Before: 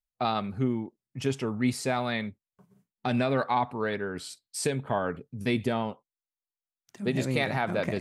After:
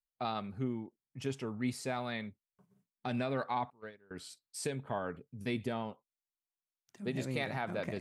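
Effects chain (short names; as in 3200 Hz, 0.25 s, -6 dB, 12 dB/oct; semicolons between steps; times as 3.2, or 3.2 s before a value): 3.7–4.11 gate -26 dBFS, range -24 dB; gain -8.5 dB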